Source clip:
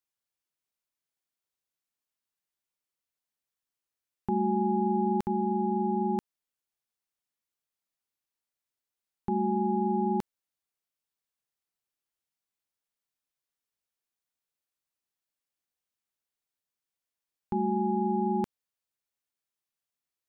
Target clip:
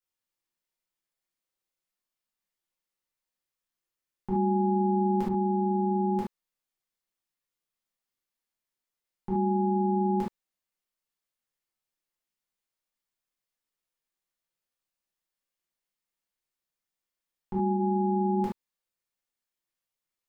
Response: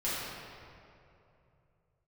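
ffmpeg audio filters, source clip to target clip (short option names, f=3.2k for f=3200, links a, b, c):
-filter_complex "[0:a]asplit=3[a][b][c];[a]afade=t=out:st=17.73:d=0.02[d];[b]lowpass=f=1.5k:w=0.5412,lowpass=f=1.5k:w=1.3066,afade=t=in:st=17.73:d=0.02,afade=t=out:st=18.34:d=0.02[e];[c]afade=t=in:st=18.34:d=0.02[f];[d][e][f]amix=inputs=3:normalize=0[g];[1:a]atrim=start_sample=2205,atrim=end_sample=3528[h];[g][h]afir=irnorm=-1:irlink=0,volume=-3dB"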